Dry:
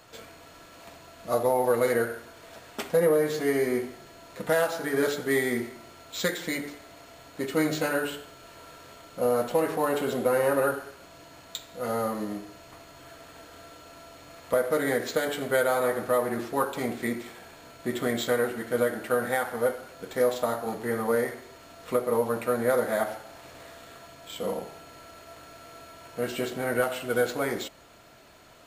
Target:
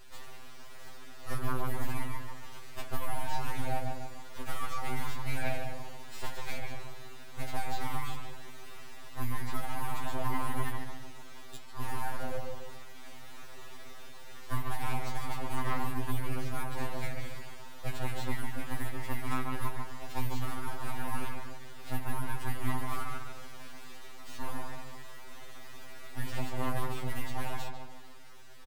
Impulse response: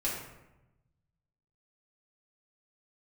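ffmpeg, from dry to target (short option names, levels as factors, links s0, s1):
-filter_complex "[0:a]acrossover=split=570|2200[s0][s1][s2];[s0]acompressor=threshold=0.02:ratio=4[s3];[s1]acompressor=threshold=0.00794:ratio=4[s4];[s2]acompressor=threshold=0.00501:ratio=4[s5];[s3][s4][s5]amix=inputs=3:normalize=0,asplit=2[s6][s7];[s7]adelay=145,lowpass=f=1200:p=1,volume=0.708,asplit=2[s8][s9];[s9]adelay=145,lowpass=f=1200:p=1,volume=0.49,asplit=2[s10][s11];[s11]adelay=145,lowpass=f=1200:p=1,volume=0.49,asplit=2[s12][s13];[s13]adelay=145,lowpass=f=1200:p=1,volume=0.49,asplit=2[s14][s15];[s15]adelay=145,lowpass=f=1200:p=1,volume=0.49,asplit=2[s16][s17];[s17]adelay=145,lowpass=f=1200:p=1,volume=0.49[s18];[s6][s8][s10][s12][s14][s16][s18]amix=inputs=7:normalize=0,aeval=exprs='abs(val(0))':c=same,asplit=2[s19][s20];[1:a]atrim=start_sample=2205,asetrate=74970,aresample=44100[s21];[s20][s21]afir=irnorm=-1:irlink=0,volume=0.112[s22];[s19][s22]amix=inputs=2:normalize=0,afftfilt=real='re*2.45*eq(mod(b,6),0)':imag='im*2.45*eq(mod(b,6),0)':win_size=2048:overlap=0.75,volume=1.12"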